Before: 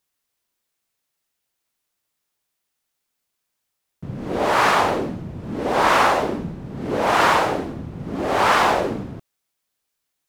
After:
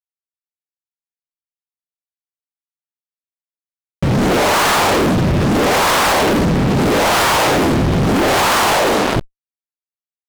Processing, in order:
0:08.73–0:09.16: high-pass filter 550 Hz 12 dB per octave
fuzz pedal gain 43 dB, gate −45 dBFS
envelope flattener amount 70%

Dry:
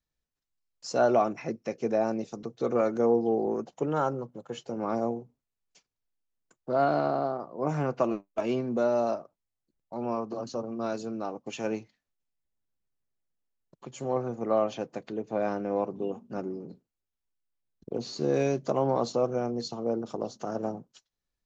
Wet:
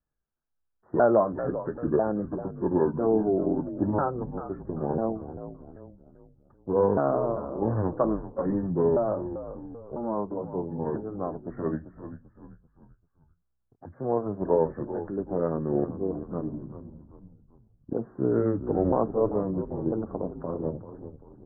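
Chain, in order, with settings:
pitch shifter swept by a sawtooth −7 semitones, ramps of 996 ms
Butterworth low-pass 1,700 Hz 96 dB per octave
on a send: echo with shifted repeats 390 ms, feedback 44%, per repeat −63 Hz, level −11.5 dB
on the sum: level +3 dB

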